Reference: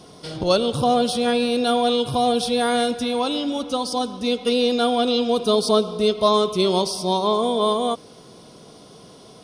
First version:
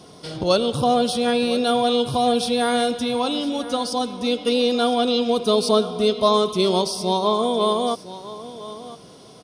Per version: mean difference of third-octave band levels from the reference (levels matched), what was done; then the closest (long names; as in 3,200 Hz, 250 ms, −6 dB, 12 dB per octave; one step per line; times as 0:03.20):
1.0 dB: high-pass filter 48 Hz
on a send: single-tap delay 1,007 ms −15.5 dB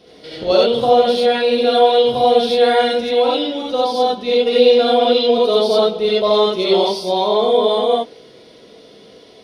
6.5 dB: graphic EQ with 10 bands 125 Hz −5 dB, 500 Hz +9 dB, 1,000 Hz −8 dB, 2,000 Hz +9 dB, 4,000 Hz +6 dB, 8,000 Hz −12 dB
reverb whose tail is shaped and stops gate 110 ms rising, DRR −5 dB
dynamic equaliser 790 Hz, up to +8 dB, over −26 dBFS, Q 1.1
level −7 dB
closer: first